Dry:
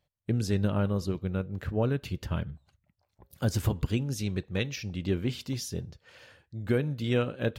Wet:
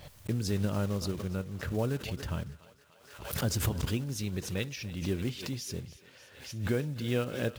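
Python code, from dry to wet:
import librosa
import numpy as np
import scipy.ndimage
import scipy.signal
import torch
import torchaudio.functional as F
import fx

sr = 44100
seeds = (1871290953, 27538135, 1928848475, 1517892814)

y = fx.block_float(x, sr, bits=5)
y = fx.echo_thinned(y, sr, ms=292, feedback_pct=76, hz=470.0, wet_db=-17.0)
y = fx.pre_swell(y, sr, db_per_s=75.0)
y = y * librosa.db_to_amplitude(-4.0)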